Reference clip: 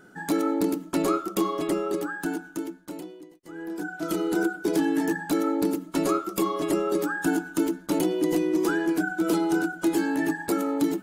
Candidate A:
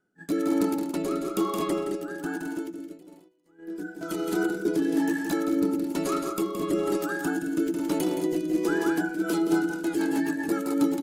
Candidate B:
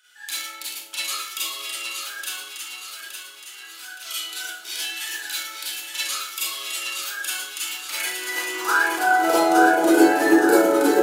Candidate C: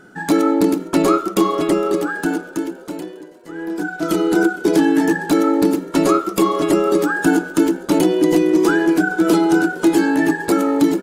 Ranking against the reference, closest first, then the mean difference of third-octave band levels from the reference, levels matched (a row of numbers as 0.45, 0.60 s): C, A, B; 1.5, 5.0, 14.5 dB